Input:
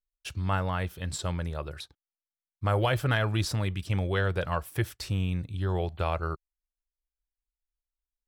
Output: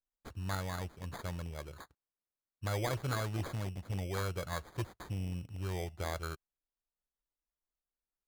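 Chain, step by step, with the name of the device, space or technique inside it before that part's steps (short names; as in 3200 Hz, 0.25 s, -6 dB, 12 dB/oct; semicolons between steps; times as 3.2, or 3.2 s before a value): crushed at another speed (playback speed 0.8×; sample-and-hold 20×; playback speed 1.25×); gain -9 dB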